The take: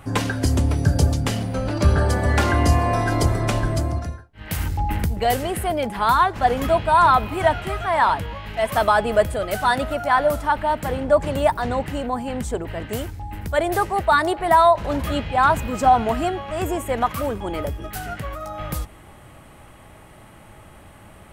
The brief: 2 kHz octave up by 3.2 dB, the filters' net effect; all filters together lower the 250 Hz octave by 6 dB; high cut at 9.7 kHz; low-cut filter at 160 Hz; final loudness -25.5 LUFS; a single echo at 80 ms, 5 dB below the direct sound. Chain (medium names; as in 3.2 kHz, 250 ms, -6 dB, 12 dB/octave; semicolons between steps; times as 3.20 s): high-pass 160 Hz; low-pass 9.7 kHz; peaking EQ 250 Hz -7 dB; peaking EQ 2 kHz +4.5 dB; delay 80 ms -5 dB; trim -5.5 dB